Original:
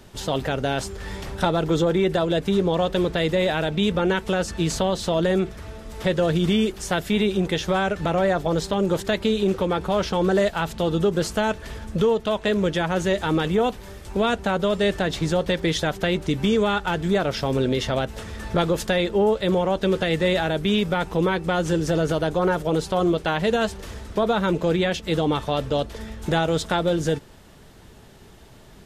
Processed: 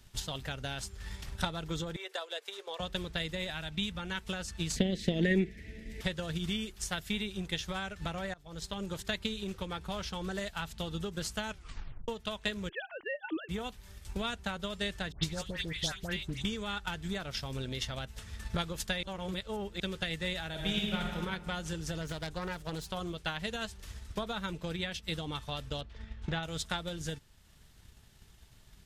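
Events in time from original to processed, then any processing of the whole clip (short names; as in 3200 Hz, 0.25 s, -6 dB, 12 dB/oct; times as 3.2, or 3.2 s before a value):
1.96–2.8 elliptic high-pass 430 Hz, stop band 60 dB
3.5–4.17 bell 440 Hz -6 dB 0.79 oct
4.76–6.01 EQ curve 110 Hz 0 dB, 210 Hz +13 dB, 440 Hz +12 dB, 1200 Hz -21 dB, 1900 Hz +14 dB, 3200 Hz +1 dB, 9400 Hz -6 dB
8.34–8.82 fade in, from -20 dB
11.5 tape stop 0.58 s
12.69–13.49 sine-wave speech
15.12–16.45 dispersion highs, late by 0.111 s, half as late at 1700 Hz
19.03–19.8 reverse
20.49–21.15 reverb throw, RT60 1.8 s, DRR -1.5 dB
22.01–22.9 self-modulated delay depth 0.15 ms
24.53–25.18 notch 6800 Hz
25.81–26.43 LPF 3200 Hz
whole clip: passive tone stack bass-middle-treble 5-5-5; transient shaper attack +7 dB, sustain -3 dB; low shelf 140 Hz +9 dB; gain -2 dB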